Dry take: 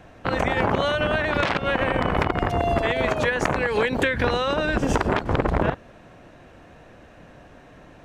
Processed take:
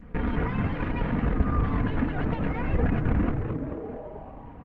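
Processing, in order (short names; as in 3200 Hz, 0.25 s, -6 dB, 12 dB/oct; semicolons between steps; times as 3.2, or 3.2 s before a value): minimum comb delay 7.2 ms; LPF 1100 Hz 24 dB/oct; low shelf 220 Hz +11 dB; on a send at -19 dB: reverb RT60 2.1 s, pre-delay 4 ms; on the sum: flange 0.99 Hz, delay 1.4 ms, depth 4.5 ms, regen -58%; bell 490 Hz -11 dB 2.4 oct; frequency-shifting echo 0.379 s, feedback 53%, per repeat -96 Hz, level -6 dB; speed mistake 45 rpm record played at 78 rpm; in parallel at +1 dB: compressor 6:1, threshold -37 dBFS, peak gain reduction 17.5 dB; on the sum: Opus 20 kbps 48000 Hz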